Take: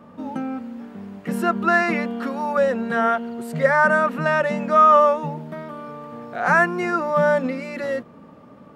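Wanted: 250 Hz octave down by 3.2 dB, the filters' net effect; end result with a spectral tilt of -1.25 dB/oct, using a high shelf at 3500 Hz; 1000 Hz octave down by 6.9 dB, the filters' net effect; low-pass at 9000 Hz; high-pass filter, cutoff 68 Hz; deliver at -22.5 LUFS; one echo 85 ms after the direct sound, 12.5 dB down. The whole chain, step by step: HPF 68 Hz; LPF 9000 Hz; bell 250 Hz -3.5 dB; bell 1000 Hz -9 dB; high shelf 3500 Hz -4 dB; echo 85 ms -12.5 dB; gain +1.5 dB

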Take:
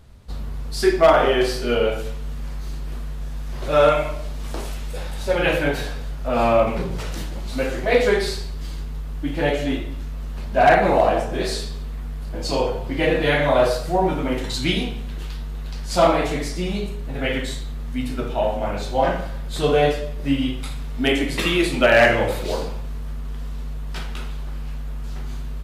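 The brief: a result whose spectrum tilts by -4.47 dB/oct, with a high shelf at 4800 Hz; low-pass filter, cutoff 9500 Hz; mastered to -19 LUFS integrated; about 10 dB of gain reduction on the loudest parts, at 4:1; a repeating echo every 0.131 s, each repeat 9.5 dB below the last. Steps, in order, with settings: LPF 9500 Hz; high shelf 4800 Hz +6.5 dB; compressor 4:1, threshold -22 dBFS; feedback echo 0.131 s, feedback 33%, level -9.5 dB; gain +8.5 dB

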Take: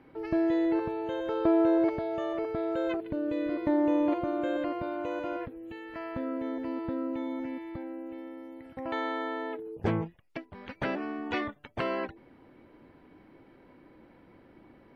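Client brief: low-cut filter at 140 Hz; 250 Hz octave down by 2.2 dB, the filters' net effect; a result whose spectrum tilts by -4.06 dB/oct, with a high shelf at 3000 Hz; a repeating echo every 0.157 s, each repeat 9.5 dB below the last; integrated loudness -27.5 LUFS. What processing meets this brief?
HPF 140 Hz; bell 250 Hz -3 dB; high shelf 3000 Hz +8 dB; feedback echo 0.157 s, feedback 33%, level -9.5 dB; gain +3.5 dB

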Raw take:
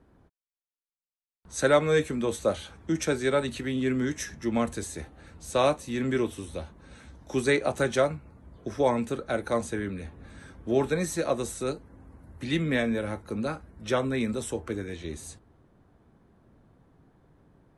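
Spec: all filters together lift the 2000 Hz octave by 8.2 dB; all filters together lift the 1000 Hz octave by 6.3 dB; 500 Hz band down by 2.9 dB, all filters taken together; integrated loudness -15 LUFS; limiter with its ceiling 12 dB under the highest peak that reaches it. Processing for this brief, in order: bell 500 Hz -6 dB; bell 1000 Hz +7.5 dB; bell 2000 Hz +8 dB; gain +14.5 dB; limiter -1.5 dBFS

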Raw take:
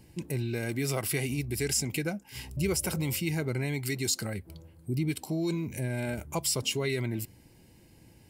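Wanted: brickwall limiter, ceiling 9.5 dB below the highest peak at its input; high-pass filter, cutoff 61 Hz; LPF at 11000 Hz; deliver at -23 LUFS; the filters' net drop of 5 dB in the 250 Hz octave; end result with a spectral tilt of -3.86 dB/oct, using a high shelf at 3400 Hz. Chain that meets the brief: HPF 61 Hz; LPF 11000 Hz; bell 250 Hz -8 dB; high shelf 3400 Hz +7 dB; gain +10 dB; limiter -11 dBFS

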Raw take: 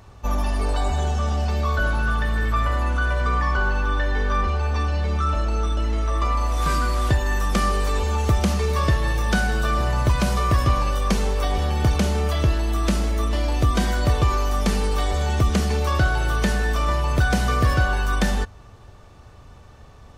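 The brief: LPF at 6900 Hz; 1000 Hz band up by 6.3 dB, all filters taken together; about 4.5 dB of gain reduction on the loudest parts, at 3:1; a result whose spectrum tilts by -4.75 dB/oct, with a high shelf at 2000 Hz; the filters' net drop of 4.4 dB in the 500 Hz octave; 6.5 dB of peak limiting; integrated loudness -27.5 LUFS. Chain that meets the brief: LPF 6900 Hz; bell 500 Hz -8.5 dB; bell 1000 Hz +8.5 dB; high shelf 2000 Hz +4.5 dB; compressor 3:1, threshold -19 dBFS; gain -2.5 dB; limiter -18.5 dBFS

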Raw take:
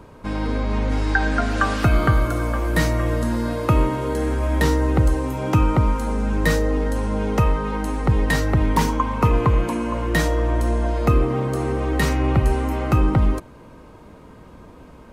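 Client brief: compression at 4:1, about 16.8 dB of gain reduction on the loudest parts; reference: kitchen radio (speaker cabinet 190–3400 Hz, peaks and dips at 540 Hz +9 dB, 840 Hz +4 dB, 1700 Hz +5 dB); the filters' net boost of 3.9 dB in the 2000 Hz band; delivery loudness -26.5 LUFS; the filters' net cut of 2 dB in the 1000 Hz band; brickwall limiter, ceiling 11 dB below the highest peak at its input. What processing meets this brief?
bell 1000 Hz -6.5 dB; bell 2000 Hz +3 dB; compressor 4:1, threshold -34 dBFS; limiter -29.5 dBFS; speaker cabinet 190–3400 Hz, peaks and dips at 540 Hz +9 dB, 840 Hz +4 dB, 1700 Hz +5 dB; gain +13.5 dB

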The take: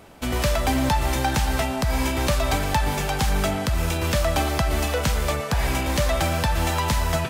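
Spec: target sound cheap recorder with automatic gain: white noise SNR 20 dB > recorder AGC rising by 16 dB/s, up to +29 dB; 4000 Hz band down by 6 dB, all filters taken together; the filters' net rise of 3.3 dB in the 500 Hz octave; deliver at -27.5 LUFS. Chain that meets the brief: bell 500 Hz +4.5 dB; bell 4000 Hz -8 dB; white noise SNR 20 dB; recorder AGC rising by 16 dB/s, up to +29 dB; gain -5 dB

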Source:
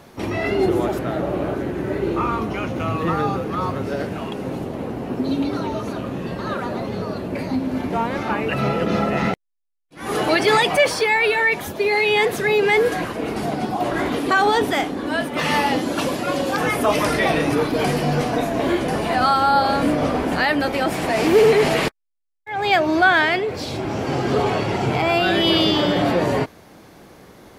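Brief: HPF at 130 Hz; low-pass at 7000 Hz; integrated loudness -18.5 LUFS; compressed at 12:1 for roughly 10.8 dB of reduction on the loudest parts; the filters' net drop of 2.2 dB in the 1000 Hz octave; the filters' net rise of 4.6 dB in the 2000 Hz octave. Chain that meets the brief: HPF 130 Hz; LPF 7000 Hz; bell 1000 Hz -5 dB; bell 2000 Hz +7 dB; compressor 12:1, threshold -21 dBFS; gain +7 dB

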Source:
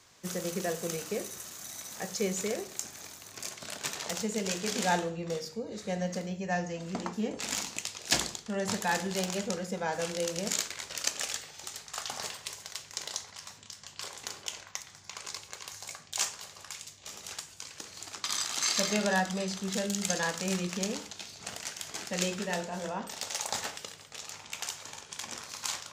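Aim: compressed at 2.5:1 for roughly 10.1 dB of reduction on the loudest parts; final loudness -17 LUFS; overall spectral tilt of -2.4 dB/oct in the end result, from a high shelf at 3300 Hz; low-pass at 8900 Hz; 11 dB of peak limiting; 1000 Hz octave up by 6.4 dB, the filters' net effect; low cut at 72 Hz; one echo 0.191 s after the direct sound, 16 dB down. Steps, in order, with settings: HPF 72 Hz; LPF 8900 Hz; bell 1000 Hz +8 dB; high shelf 3300 Hz +5 dB; compressor 2.5:1, threshold -33 dBFS; limiter -23.5 dBFS; echo 0.191 s -16 dB; gain +20.5 dB

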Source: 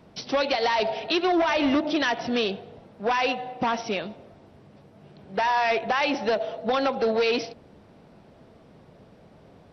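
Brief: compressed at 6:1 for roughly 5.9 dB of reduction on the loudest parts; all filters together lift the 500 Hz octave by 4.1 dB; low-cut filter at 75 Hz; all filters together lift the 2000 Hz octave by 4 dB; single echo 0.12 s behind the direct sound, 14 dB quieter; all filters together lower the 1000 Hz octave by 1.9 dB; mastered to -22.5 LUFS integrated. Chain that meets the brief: HPF 75 Hz; bell 500 Hz +6.5 dB; bell 1000 Hz -7 dB; bell 2000 Hz +6.5 dB; compressor 6:1, threshold -22 dBFS; echo 0.12 s -14 dB; gain +4 dB

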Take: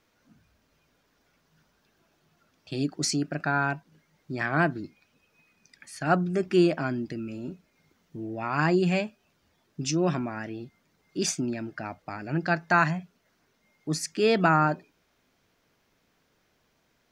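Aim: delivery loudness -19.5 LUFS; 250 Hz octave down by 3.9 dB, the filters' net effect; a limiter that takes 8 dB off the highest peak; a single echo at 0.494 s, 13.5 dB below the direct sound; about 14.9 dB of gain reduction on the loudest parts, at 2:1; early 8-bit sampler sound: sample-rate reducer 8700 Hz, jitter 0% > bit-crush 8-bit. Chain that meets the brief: bell 250 Hz -6.5 dB; compressor 2:1, threshold -46 dBFS; limiter -32 dBFS; echo 0.494 s -13.5 dB; sample-rate reducer 8700 Hz, jitter 0%; bit-crush 8-bit; gain +24 dB

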